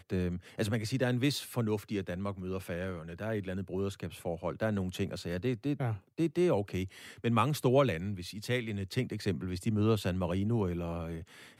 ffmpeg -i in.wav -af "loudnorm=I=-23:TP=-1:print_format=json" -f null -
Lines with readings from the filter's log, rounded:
"input_i" : "-33.4",
"input_tp" : "-14.1",
"input_lra" : "4.0",
"input_thresh" : "-43.5",